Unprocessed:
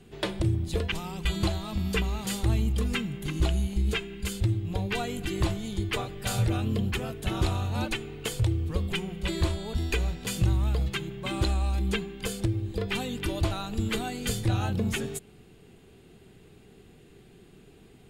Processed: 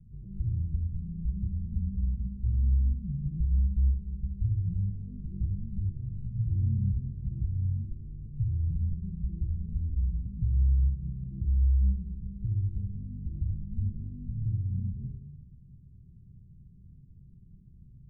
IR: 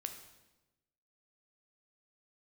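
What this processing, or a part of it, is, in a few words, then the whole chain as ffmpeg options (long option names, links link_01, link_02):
club heard from the street: -filter_complex "[0:a]alimiter=level_in=1.5dB:limit=-24dB:level=0:latency=1:release=136,volume=-1.5dB,lowpass=frequency=150:width=0.5412,lowpass=frequency=150:width=1.3066[link_01];[1:a]atrim=start_sample=2205[link_02];[link_01][link_02]afir=irnorm=-1:irlink=0,asettb=1/sr,asplit=3[link_03][link_04][link_05];[link_03]atrim=end=6.484[link_06];[link_04]atrim=start=6.48:end=7.01,asetpts=PTS-STARTPTS,afade=type=in:duration=0.004:curve=qsin,afade=type=out:start_time=0.526:duration=0.004:curve=qsin,tiltshelf=frequency=970:gain=3.5[link_07];[link_05]atrim=start=7.006[link_08];[link_06][link_07]acrossfade=duration=0.004:curve1=hsin:curve2=qsin[link_09];[link_09][link_08]acrossfade=duration=0.004:curve1=qsin:curve2=hsin,volume=8dB"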